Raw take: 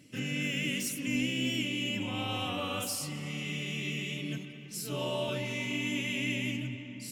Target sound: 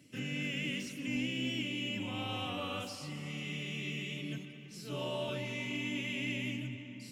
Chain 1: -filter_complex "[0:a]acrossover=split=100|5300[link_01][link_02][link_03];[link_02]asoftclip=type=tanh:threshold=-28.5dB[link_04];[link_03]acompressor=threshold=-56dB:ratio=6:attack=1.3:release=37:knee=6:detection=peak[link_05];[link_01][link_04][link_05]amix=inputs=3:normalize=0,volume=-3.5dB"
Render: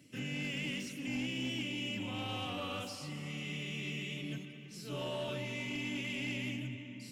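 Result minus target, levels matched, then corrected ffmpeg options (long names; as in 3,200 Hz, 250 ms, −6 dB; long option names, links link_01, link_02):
soft clipping: distortion +11 dB
-filter_complex "[0:a]acrossover=split=100|5300[link_01][link_02][link_03];[link_02]asoftclip=type=tanh:threshold=-21dB[link_04];[link_03]acompressor=threshold=-56dB:ratio=6:attack=1.3:release=37:knee=6:detection=peak[link_05];[link_01][link_04][link_05]amix=inputs=3:normalize=0,volume=-3.5dB"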